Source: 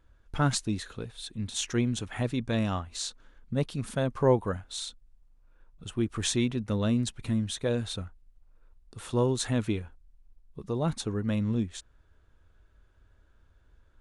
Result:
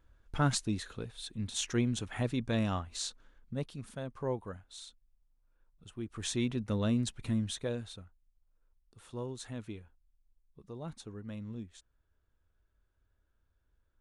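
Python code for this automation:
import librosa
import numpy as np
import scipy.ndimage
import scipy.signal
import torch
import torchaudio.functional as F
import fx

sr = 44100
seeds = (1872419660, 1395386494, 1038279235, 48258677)

y = fx.gain(x, sr, db=fx.line((3.06, -3.0), (3.96, -12.0), (6.01, -12.0), (6.51, -3.5), (7.51, -3.5), (8.03, -14.0)))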